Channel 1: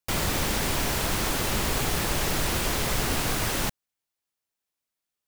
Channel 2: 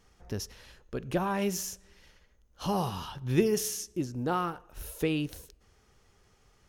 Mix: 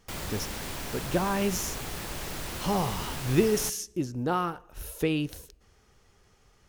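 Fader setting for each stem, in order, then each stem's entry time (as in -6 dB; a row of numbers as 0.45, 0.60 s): -10.0, +2.0 dB; 0.00, 0.00 s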